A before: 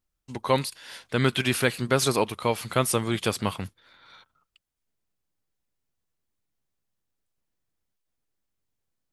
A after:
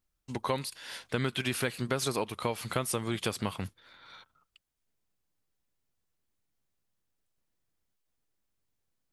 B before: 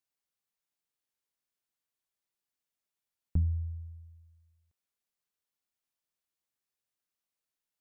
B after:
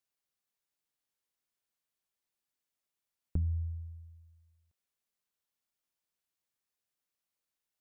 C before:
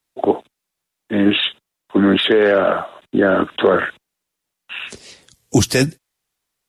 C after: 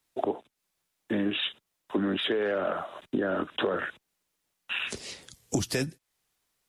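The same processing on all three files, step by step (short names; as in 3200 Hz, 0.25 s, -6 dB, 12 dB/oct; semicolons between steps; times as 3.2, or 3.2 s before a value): compressor 4:1, threshold -28 dBFS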